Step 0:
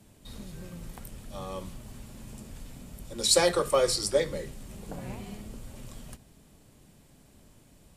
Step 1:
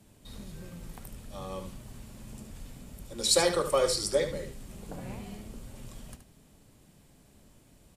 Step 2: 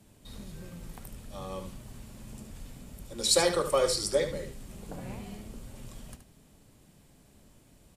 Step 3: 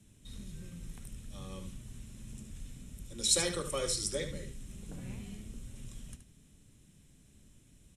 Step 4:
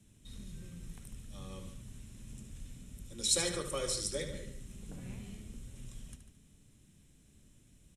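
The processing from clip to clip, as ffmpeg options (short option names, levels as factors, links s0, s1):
-af "aecho=1:1:74:0.335,volume=0.794"
-af anull
-af "lowpass=f=11000:w=0.5412,lowpass=f=11000:w=1.3066,equalizer=f=770:w=0.67:g=-14.5,bandreject=f=4600:w=5.1"
-filter_complex "[0:a]asplit=2[s0][s1];[s1]adelay=145.8,volume=0.282,highshelf=f=4000:g=-3.28[s2];[s0][s2]amix=inputs=2:normalize=0,volume=0.794"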